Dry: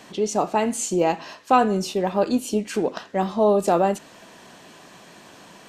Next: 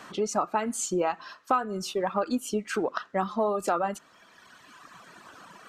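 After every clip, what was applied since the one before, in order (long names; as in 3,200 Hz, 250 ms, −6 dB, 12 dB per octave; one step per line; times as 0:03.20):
reverb reduction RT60 1.8 s
parametric band 1,300 Hz +14 dB 0.63 octaves
downward compressor 5 to 1, threshold −19 dBFS, peak gain reduction 13.5 dB
level −3.5 dB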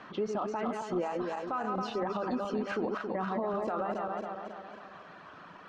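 feedback delay that plays each chunk backwards 136 ms, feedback 71%, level −6 dB
brickwall limiter −22 dBFS, peak gain reduction 10.5 dB
high-frequency loss of the air 250 metres
level −1 dB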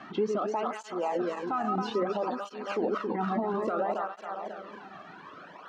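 through-zero flanger with one copy inverted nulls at 0.6 Hz, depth 2.1 ms
level +5.5 dB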